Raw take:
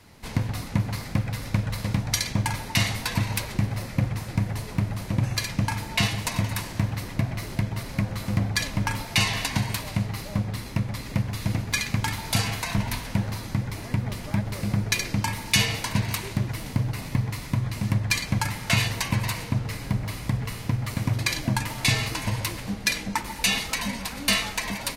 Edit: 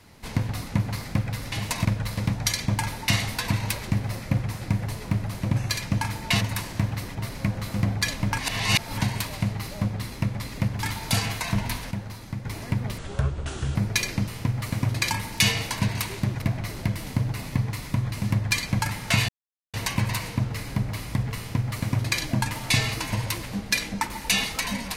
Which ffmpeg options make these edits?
-filter_complex "[0:a]asplit=17[a][b][c][d][e][f][g][h][i][j][k][l][m][n][o][p][q];[a]atrim=end=1.522[r];[b]atrim=start=6.078:end=6.412[s];[c]atrim=start=1.518:end=6.082[t];[d]atrim=start=6.408:end=7.152[u];[e]atrim=start=7.688:end=8.922[v];[f]atrim=start=8.918:end=9.552,asetpts=PTS-STARTPTS,areverse[w];[g]atrim=start=9.548:end=11.372[x];[h]atrim=start=12.048:end=13.132[y];[i]atrim=start=13.128:end=13.672,asetpts=PTS-STARTPTS,volume=-6.5dB[z];[j]atrim=start=13.668:end=14.204[aa];[k]atrim=start=14.2:end=14.72,asetpts=PTS-STARTPTS,asetrate=29547,aresample=44100[ab];[l]atrim=start=14.716:end=15.242[ac];[m]atrim=start=20.518:end=21.352[ad];[n]atrim=start=15.238:end=16.552[ae];[o]atrim=start=7.148:end=7.692[af];[p]atrim=start=16.548:end=18.88,asetpts=PTS-STARTPTS,afade=t=out:st=2.328:d=0.004:c=hsin,apad=pad_dur=0.45[ag];[q]atrim=start=18.88,asetpts=PTS-STARTPTS,afade=t=in:d=0.004:c=hsin[ah];[r][s]acrossfade=d=0.004:c1=hsin:c2=hsin[ai];[ai][t]acrossfade=d=0.004:c1=hsin:c2=hsin[aj];[aj][u]acrossfade=d=0.004:c1=hsin:c2=hsin[ak];[ak][v]acrossfade=d=0.004:c1=hsin:c2=hsin[al];[al][w]acrossfade=d=0.004:c1=hsin:c2=hsin[am];[am][x]acrossfade=d=0.004:c1=hsin:c2=hsin[an];[an][y]acrossfade=d=0.004:c1=hsin:c2=hsin[ao];[ao][z]acrossfade=d=0.004:c1=hsin:c2=hsin[ap];[ap][aa]acrossfade=d=0.004:c1=hsin:c2=hsin[aq];[aq][ab]acrossfade=d=0.004:c1=hsin:c2=hsin[ar];[ar][ac]acrossfade=d=0.004:c1=hsin:c2=hsin[as];[as][ad]acrossfade=d=0.004:c1=hsin:c2=hsin[at];[at][ae]acrossfade=d=0.004:c1=hsin:c2=hsin[au];[au][af]acrossfade=d=0.004:c1=hsin:c2=hsin[av];[ag][ah]concat=n=2:v=0:a=1[aw];[av][aw]acrossfade=d=0.004:c1=hsin:c2=hsin"

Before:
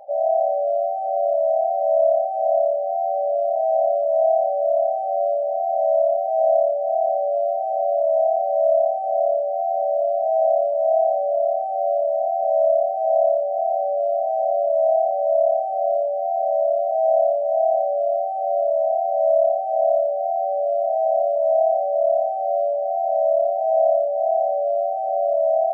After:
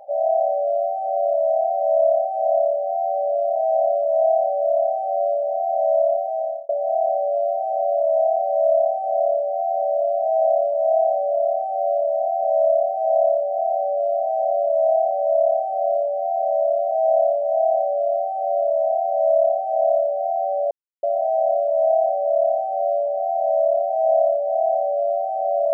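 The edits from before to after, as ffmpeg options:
-filter_complex "[0:a]asplit=3[a][b][c];[a]atrim=end=6.69,asetpts=PTS-STARTPTS,afade=t=out:st=6.15:d=0.54[d];[b]atrim=start=6.69:end=20.71,asetpts=PTS-STARTPTS,afade=t=in:d=0.004:c=hsin,afade=t=out:st=14.016:d=0.004:c=hsin,apad=pad_dur=0.32[e];[c]atrim=start=20.71,asetpts=PTS-STARTPTS,afade=t=in:d=0.004:c=hsin[f];[d][e][f]concat=n=3:v=0:a=1"

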